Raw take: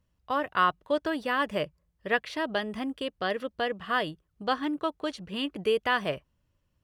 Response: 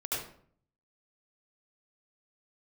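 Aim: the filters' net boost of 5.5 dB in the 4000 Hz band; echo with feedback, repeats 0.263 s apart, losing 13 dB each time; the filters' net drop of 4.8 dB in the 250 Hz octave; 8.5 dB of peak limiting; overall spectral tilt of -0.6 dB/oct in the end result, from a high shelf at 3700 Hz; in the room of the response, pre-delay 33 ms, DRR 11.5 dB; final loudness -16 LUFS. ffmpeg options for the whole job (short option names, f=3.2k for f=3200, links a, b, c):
-filter_complex "[0:a]equalizer=f=250:t=o:g=-6,highshelf=f=3.7k:g=5,equalizer=f=4k:t=o:g=5,alimiter=limit=-18.5dB:level=0:latency=1,aecho=1:1:263|526|789:0.224|0.0493|0.0108,asplit=2[a][b];[1:a]atrim=start_sample=2205,adelay=33[c];[b][c]afir=irnorm=-1:irlink=0,volume=-16.5dB[d];[a][d]amix=inputs=2:normalize=0,volume=15.5dB"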